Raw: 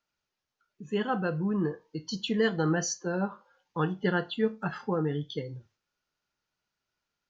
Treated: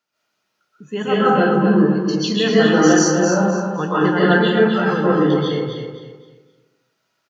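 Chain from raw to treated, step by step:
high-pass filter 150 Hz
on a send: repeating echo 259 ms, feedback 30%, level −7 dB
on the sum: comb and all-pass reverb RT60 0.91 s, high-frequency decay 0.5×, pre-delay 100 ms, DRR −9.5 dB
level +4.5 dB

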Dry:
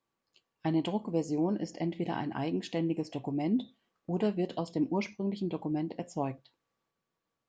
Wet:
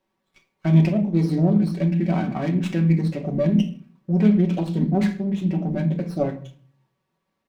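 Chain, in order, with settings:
formants moved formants −4 semitones
comb filter 5.3 ms, depth 48%
on a send at −3.5 dB: convolution reverb RT60 0.45 s, pre-delay 3 ms
on the sum: windowed peak hold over 5 samples
level +6.5 dB

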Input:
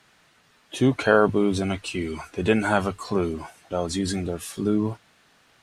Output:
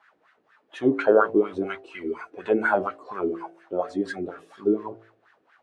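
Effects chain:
LFO wah 4.2 Hz 330–1,700 Hz, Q 4.1
hum removal 55.85 Hz, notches 14
level +8 dB

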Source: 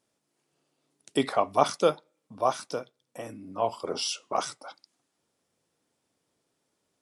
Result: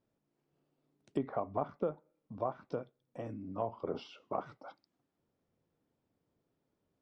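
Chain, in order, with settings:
treble cut that deepens with the level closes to 1,600 Hz, closed at −25 dBFS
spectral tilt −3 dB per octave
downward compressor 5 to 1, threshold −24 dBFS, peak gain reduction 10 dB
high-frequency loss of the air 84 metres
level −6.5 dB

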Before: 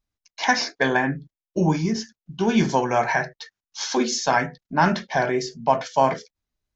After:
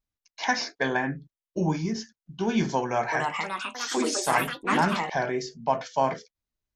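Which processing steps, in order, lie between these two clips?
0:02.81–0:05.30: delay with pitch and tempo change per echo 312 ms, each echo +4 semitones, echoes 3
level −5.5 dB

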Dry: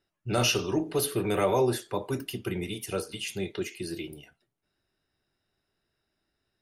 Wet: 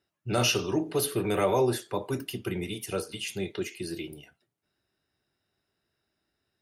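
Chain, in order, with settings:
high-pass filter 57 Hz

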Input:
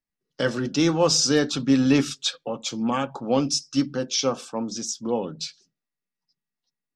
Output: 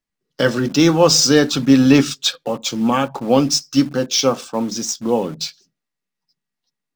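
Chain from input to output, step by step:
running median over 3 samples
in parallel at −12 dB: bit reduction 6 bits
on the sum: level +5.5 dB

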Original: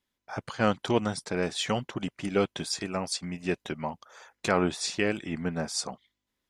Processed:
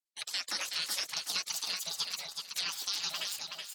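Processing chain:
pitch glide at a constant tempo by +2.5 semitones starting unshifted
gate on every frequency bin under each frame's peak −15 dB weak
meter weighting curve D
noise gate −58 dBFS, range −14 dB
high-shelf EQ 6,300 Hz −8.5 dB
in parallel at +1.5 dB: brickwall limiter −24 dBFS, peak gain reduction 10 dB
on the sum: downward compressor, threshold −25 dBFS, peak gain reduction 5.5 dB
flanger 1.5 Hz, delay 1.1 ms, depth 5.8 ms, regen −58%
repeating echo 649 ms, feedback 27%, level −5 dB
wrong playback speed 45 rpm record played at 78 rpm

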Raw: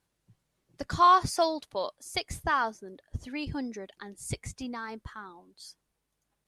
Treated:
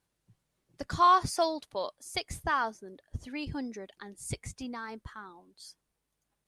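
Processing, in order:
parametric band 9,100 Hz +2 dB 0.24 octaves
level −2 dB

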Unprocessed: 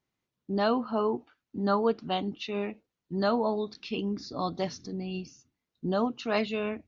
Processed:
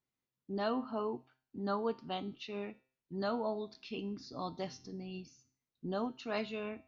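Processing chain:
tuned comb filter 130 Hz, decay 0.46 s, harmonics all, mix 60%
level −2 dB

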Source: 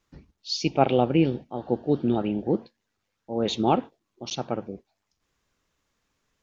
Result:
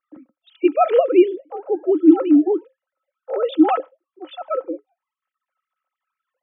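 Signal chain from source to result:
three sine waves on the formant tracks
hollow resonant body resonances 300/530/1,300 Hz, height 16 dB, ringing for 85 ms
one half of a high-frequency compander decoder only
level +2 dB

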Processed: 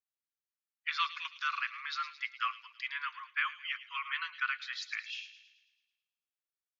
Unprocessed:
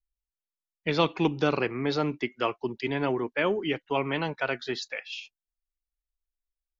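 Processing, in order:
Butterworth high-pass 1,100 Hz 96 dB per octave
high-shelf EQ 2,500 Hz −8.5 dB
delay with a high-pass on its return 109 ms, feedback 53%, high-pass 2,700 Hz, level −10.5 dB
level +1.5 dB

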